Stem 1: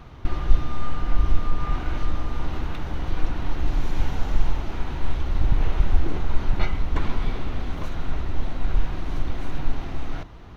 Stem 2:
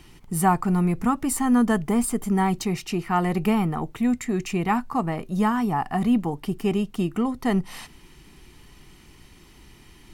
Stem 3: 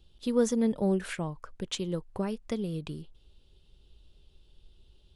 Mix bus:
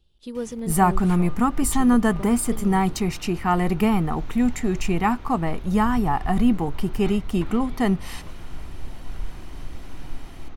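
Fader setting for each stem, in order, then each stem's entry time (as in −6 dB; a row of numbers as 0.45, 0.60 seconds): −9.5, +1.5, −5.0 decibels; 0.45, 0.35, 0.00 seconds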